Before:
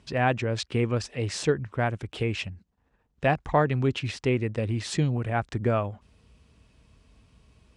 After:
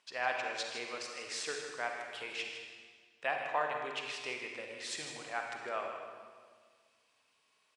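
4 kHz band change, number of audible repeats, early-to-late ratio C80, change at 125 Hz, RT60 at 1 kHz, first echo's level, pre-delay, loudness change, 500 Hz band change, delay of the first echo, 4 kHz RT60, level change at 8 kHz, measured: -4.5 dB, 1, 3.5 dB, -36.5 dB, 1.6 s, -9.5 dB, 37 ms, -11.0 dB, -13.0 dB, 0.157 s, 1.5 s, -4.5 dB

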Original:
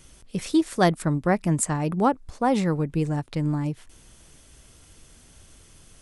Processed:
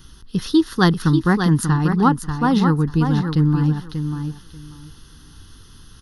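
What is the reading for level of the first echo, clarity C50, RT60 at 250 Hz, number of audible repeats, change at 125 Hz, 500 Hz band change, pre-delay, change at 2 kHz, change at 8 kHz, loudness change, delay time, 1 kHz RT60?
-7.0 dB, none, none, 2, +9.0 dB, +0.5 dB, none, +7.0 dB, -2.5 dB, +6.0 dB, 0.588 s, none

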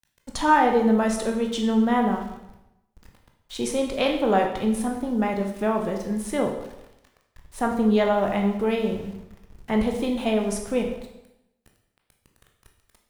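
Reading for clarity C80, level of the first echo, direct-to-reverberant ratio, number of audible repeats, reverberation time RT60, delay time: 9.0 dB, none, 2.0 dB, none, 0.90 s, none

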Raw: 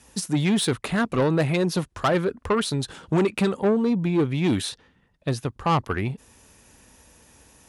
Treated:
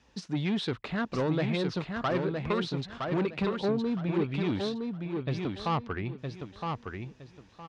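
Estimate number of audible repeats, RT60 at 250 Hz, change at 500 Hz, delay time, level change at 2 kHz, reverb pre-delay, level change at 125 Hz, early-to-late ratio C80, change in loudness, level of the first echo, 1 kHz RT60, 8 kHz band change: 3, none, -6.5 dB, 0.964 s, -6.5 dB, none, -6.5 dB, none, -7.5 dB, -4.5 dB, none, under -15 dB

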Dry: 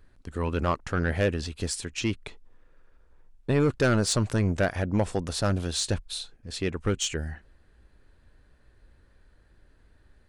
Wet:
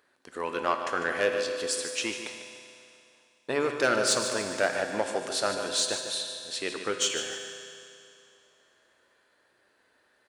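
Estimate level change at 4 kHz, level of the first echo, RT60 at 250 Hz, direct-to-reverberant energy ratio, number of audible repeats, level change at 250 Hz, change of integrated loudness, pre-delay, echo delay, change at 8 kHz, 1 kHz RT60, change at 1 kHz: +3.5 dB, -10.0 dB, 2.6 s, 3.5 dB, 2, -8.5 dB, -1.0 dB, 8 ms, 0.149 s, +3.0 dB, 2.6 s, +2.5 dB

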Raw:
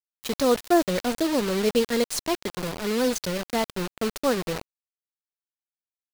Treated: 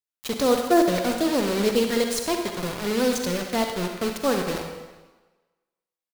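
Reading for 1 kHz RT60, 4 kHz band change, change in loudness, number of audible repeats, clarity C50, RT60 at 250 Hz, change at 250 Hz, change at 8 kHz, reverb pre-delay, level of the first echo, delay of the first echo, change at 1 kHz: 1.3 s, +1.5 dB, +1.5 dB, 1, 4.0 dB, 1.2 s, +2.0 dB, +1.5 dB, 38 ms, -11.5 dB, 67 ms, +2.0 dB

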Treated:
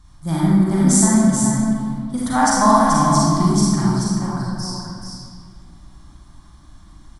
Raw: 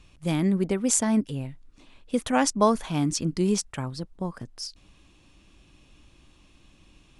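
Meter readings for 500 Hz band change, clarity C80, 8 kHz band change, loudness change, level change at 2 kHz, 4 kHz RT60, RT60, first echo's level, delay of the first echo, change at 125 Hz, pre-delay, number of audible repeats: +4.0 dB, -2.0 dB, +8.5 dB, +9.5 dB, +8.5 dB, 1.4 s, 1.9 s, -5.5 dB, 0.432 s, +11.5 dB, 34 ms, 1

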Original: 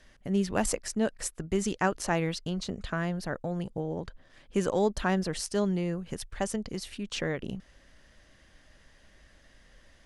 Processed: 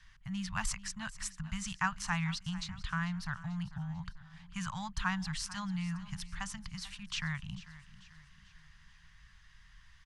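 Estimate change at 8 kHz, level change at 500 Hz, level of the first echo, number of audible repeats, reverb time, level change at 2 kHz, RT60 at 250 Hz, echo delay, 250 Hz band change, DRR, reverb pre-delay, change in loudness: -5.5 dB, -32.0 dB, -17.0 dB, 3, none, -1.5 dB, none, 0.443 s, -8.5 dB, none, none, -7.0 dB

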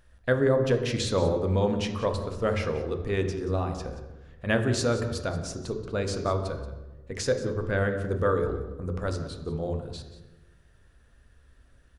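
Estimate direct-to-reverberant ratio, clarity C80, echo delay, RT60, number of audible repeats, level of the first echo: 5.5 dB, 9.5 dB, 0.18 s, 1.1 s, 1, -15.0 dB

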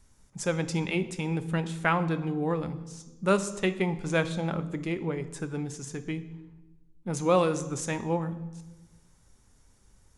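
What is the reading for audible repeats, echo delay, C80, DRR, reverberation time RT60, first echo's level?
none, none, 16.0 dB, 11.0 dB, 1.1 s, none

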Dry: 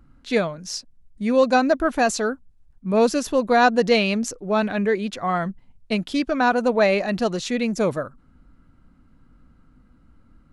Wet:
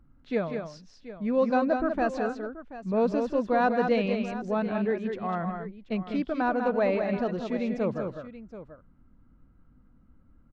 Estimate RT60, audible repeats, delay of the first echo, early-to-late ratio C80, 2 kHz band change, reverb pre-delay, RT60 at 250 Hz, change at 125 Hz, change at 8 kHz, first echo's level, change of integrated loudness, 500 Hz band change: none, 3, 0.16 s, none, -10.0 dB, none, none, -5.0 dB, under -25 dB, -17.0 dB, -6.5 dB, -6.0 dB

